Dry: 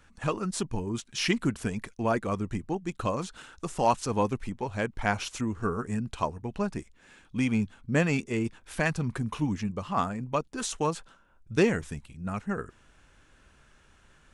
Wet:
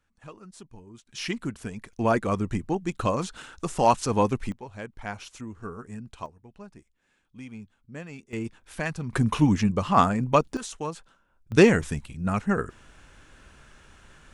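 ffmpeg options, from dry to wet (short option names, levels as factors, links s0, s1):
-af "asetnsamples=n=441:p=0,asendcmd='1.07 volume volume -4.5dB;1.93 volume volume 4dB;4.52 volume volume -8dB;6.26 volume volume -15dB;8.33 volume volume -3dB;9.13 volume volume 8.5dB;10.57 volume volume -4.5dB;11.52 volume volume 7dB',volume=0.168"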